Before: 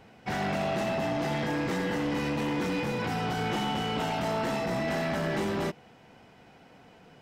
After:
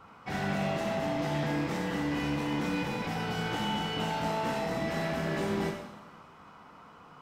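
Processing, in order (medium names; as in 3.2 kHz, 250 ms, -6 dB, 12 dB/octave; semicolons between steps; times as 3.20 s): two-slope reverb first 0.87 s, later 2.7 s, DRR 0 dB; band noise 870–1400 Hz -50 dBFS; trim -5 dB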